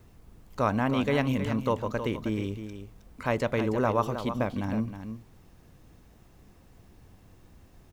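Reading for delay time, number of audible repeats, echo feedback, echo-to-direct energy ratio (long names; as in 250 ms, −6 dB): 316 ms, 1, repeats not evenly spaced, −9.5 dB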